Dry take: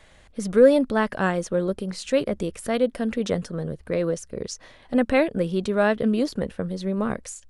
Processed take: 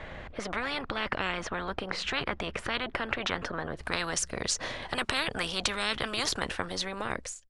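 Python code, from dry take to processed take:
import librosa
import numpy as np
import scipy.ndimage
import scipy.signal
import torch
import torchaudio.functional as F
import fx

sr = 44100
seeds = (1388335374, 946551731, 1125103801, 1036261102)

y = fx.fade_out_tail(x, sr, length_s=0.87)
y = fx.lowpass(y, sr, hz=fx.steps((0.0, 2300.0), (3.77, 7800.0)), slope=12)
y = fx.spectral_comp(y, sr, ratio=10.0)
y = F.gain(torch.from_numpy(y), -3.0).numpy()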